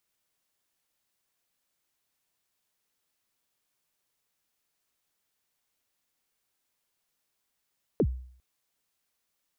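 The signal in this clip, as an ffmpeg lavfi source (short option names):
-f lavfi -i "aevalsrc='0.126*pow(10,-3*t/0.57)*sin(2*PI*(530*0.062/log(63/530)*(exp(log(63/530)*min(t,0.062)/0.062)-1)+63*max(t-0.062,0)))':d=0.4:s=44100"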